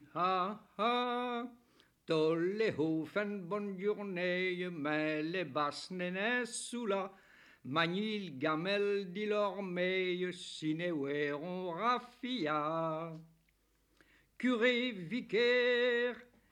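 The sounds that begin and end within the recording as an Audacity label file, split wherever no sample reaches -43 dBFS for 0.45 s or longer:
2.090000	7.080000	sound
7.660000	13.170000	sound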